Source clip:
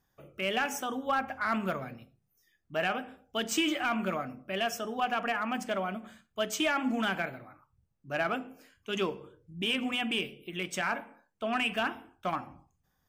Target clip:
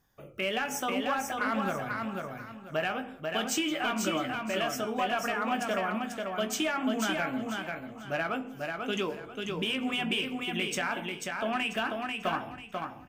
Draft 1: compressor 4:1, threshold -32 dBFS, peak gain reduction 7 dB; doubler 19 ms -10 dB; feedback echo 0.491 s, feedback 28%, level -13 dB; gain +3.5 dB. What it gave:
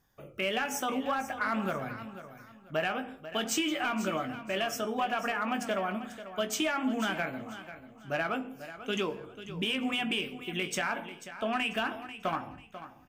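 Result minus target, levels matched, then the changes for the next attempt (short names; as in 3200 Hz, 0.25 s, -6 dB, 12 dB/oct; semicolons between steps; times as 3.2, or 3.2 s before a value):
echo-to-direct -9 dB
change: feedback echo 0.491 s, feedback 28%, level -4 dB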